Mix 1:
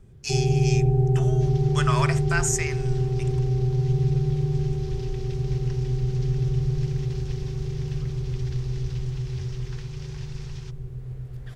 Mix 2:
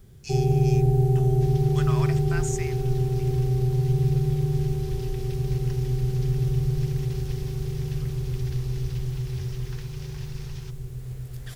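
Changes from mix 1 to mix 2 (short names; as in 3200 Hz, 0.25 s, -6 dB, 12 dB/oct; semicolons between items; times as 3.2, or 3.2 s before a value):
speech -9.5 dB; first sound: remove LPF 1400 Hz 6 dB/oct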